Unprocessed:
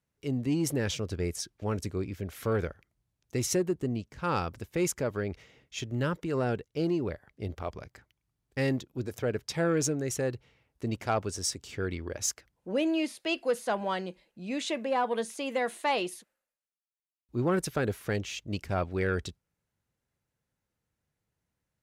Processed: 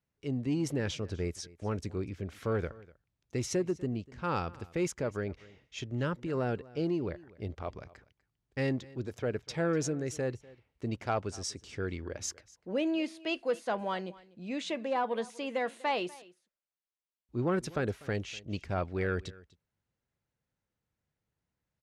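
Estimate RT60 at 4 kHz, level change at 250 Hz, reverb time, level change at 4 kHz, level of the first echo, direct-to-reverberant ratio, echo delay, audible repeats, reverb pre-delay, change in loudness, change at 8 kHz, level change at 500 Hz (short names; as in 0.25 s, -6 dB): none, -2.5 dB, none, -4.5 dB, -21.5 dB, none, 0.246 s, 1, none, -3.0 dB, -7.5 dB, -2.5 dB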